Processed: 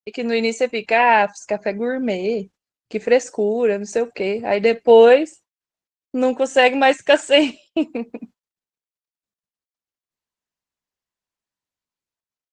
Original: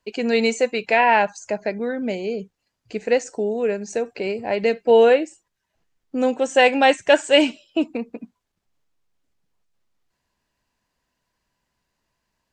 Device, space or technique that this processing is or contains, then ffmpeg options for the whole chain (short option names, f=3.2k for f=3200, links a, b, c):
video call: -af "highpass=f=110:p=1,dynaudnorm=f=330:g=5:m=7dB,agate=range=-26dB:threshold=-42dB:ratio=16:detection=peak" -ar 48000 -c:a libopus -b:a 16k